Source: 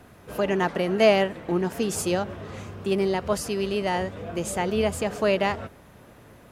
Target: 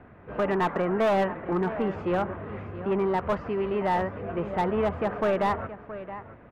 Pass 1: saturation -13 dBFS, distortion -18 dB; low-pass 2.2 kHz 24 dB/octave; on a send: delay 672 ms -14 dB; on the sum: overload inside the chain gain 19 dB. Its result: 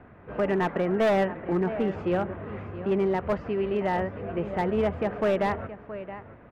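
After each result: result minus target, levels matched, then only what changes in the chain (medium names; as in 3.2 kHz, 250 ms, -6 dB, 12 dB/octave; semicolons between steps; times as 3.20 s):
saturation: distortion -7 dB; 1 kHz band -3.0 dB
change: saturation -20 dBFS, distortion -11 dB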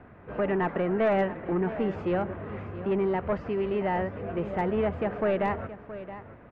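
1 kHz band -3.0 dB
add after low-pass: dynamic bell 1.1 kHz, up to +7 dB, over -43 dBFS, Q 1.4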